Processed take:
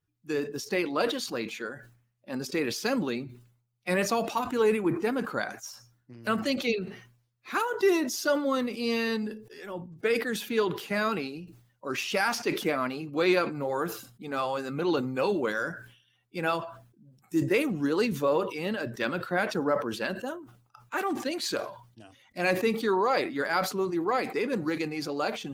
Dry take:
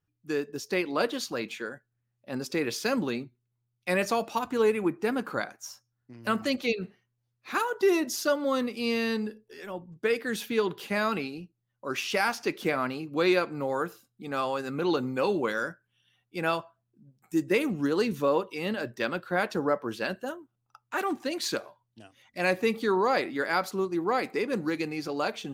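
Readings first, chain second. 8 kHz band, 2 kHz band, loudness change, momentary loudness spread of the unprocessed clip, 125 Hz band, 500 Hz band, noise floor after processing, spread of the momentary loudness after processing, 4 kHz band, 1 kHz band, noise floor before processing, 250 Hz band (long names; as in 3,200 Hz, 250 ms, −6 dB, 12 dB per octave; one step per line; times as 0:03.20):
+1.0 dB, 0.0 dB, 0.0 dB, 12 LU, +1.5 dB, 0.0 dB, −71 dBFS, 12 LU, +0.5 dB, 0.0 dB, −80 dBFS, +0.5 dB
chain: spectral magnitudes quantised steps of 15 dB
level that may fall only so fast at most 96 dB per second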